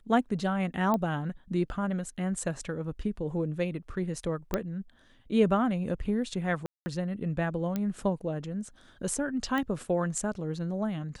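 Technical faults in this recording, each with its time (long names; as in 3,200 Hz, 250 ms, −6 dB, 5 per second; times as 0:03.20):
0:00.94: click −16 dBFS
0:04.54: click −13 dBFS
0:06.66–0:06.86: drop-out 200 ms
0:07.76: click −18 dBFS
0:09.58: click −19 dBFS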